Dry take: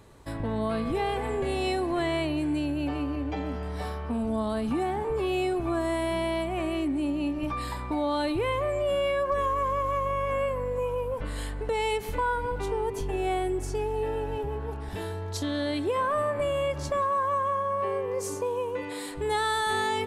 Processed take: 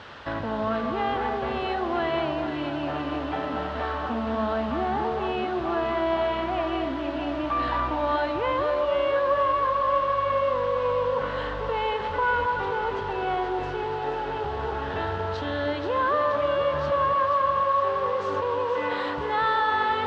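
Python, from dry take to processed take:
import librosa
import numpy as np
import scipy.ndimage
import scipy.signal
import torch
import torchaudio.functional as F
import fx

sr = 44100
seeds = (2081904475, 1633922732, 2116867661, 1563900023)

p1 = fx.over_compress(x, sr, threshold_db=-35.0, ratio=-1.0)
p2 = x + (p1 * librosa.db_to_amplitude(2.0))
p3 = fx.vibrato(p2, sr, rate_hz=1.4, depth_cents=14.0)
p4 = fx.cheby_harmonics(p3, sr, harmonics=(2,), levels_db=(-18,), full_scale_db=-13.0)
p5 = fx.quant_dither(p4, sr, seeds[0], bits=6, dither='triangular')
p6 = fx.cabinet(p5, sr, low_hz=110.0, low_slope=12, high_hz=3100.0, hz=(120.0, 180.0, 290.0, 410.0, 1400.0, 2300.0), db=(-10, -10, -7, -7, 5, -8))
y = p6 + fx.echo_alternate(p6, sr, ms=239, hz=1200.0, feedback_pct=78, wet_db=-5.5, dry=0)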